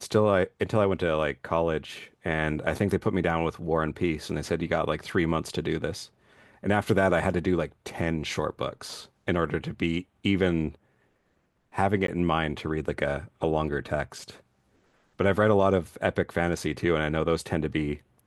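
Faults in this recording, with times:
0:12.07–0:12.08: drop-out 13 ms

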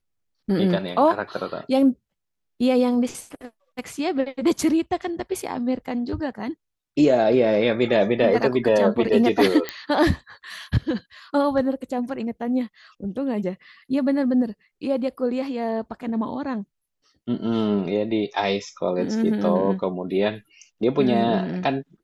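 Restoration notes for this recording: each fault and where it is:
0:09.69: click −10 dBFS

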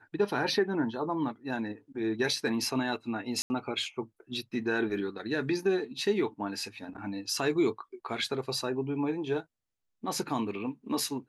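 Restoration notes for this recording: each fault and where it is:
0:03.42–0:03.50: drop-out 80 ms

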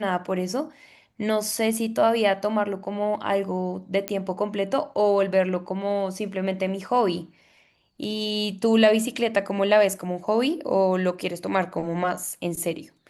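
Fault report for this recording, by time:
0:04.08: click −10 dBFS

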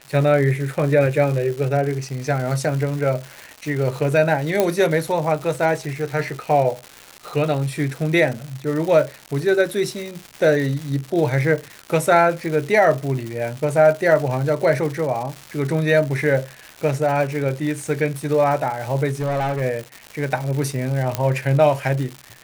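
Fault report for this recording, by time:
surface crackle 300 per second −27 dBFS
0:04.60: click −4 dBFS
0:19.13–0:19.62: clipping −19 dBFS
0:21.15: click −5 dBFS

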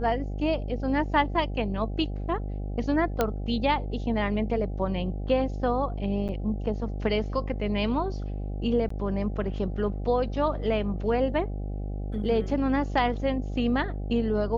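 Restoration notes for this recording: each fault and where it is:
mains buzz 50 Hz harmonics 16 −32 dBFS
0:03.21: click −10 dBFS
0:06.28–0:06.29: drop-out 8.5 ms
0:08.89–0:08.90: drop-out 14 ms

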